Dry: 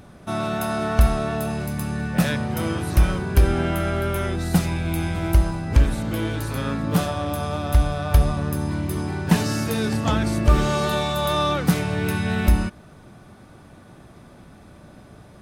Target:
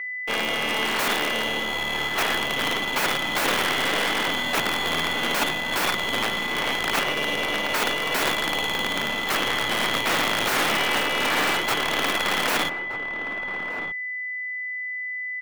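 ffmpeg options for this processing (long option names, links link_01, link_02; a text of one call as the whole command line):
ffmpeg -i in.wav -filter_complex "[0:a]lowpass=frequency=3000:width_type=q:width=0.5098,lowpass=frequency=3000:width_type=q:width=0.6013,lowpass=frequency=3000:width_type=q:width=0.9,lowpass=frequency=3000:width_type=q:width=2.563,afreqshift=-3500,asplit=2[link_01][link_02];[link_02]asetrate=55563,aresample=44100,atempo=0.793701,volume=-11dB[link_03];[link_01][link_03]amix=inputs=2:normalize=0,aresample=11025,aeval=exprs='sgn(val(0))*max(abs(val(0))-0.0141,0)':channel_layout=same,aresample=44100,adynamicsmooth=sensitivity=6:basefreq=1300,acrusher=bits=3:dc=4:mix=0:aa=0.000001,aeval=exprs='val(0)+0.0158*sin(2*PI*2000*n/s)':channel_layout=same,aeval=exprs='(mod(7.08*val(0)+1,2)-1)/7.08':channel_layout=same,acrossover=split=190 2700:gain=0.158 1 0.2[link_04][link_05][link_06];[link_04][link_05][link_06]amix=inputs=3:normalize=0,asplit=2[link_07][link_08];[link_08]adelay=1224,volume=-8dB,highshelf=frequency=4000:gain=-27.6[link_09];[link_07][link_09]amix=inputs=2:normalize=0,volume=9dB" out.wav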